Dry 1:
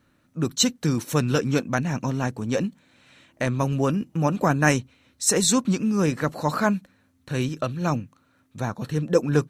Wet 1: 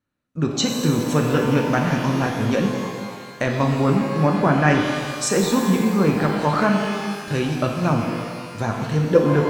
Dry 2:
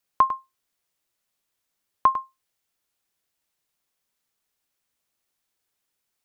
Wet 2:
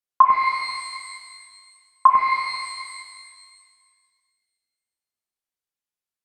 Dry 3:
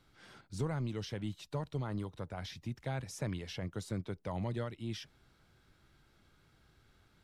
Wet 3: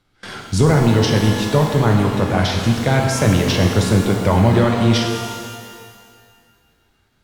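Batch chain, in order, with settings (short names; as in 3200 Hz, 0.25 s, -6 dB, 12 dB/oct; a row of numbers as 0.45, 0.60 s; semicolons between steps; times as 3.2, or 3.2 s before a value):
treble ducked by the level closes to 2500 Hz, closed at -17.5 dBFS; gate with hold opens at -48 dBFS; in parallel at -1 dB: level quantiser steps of 15 dB; on the sum: shimmer reverb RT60 1.9 s, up +12 st, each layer -8 dB, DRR 1.5 dB; normalise peaks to -2 dBFS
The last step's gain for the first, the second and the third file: 0.0, +2.0, +19.0 dB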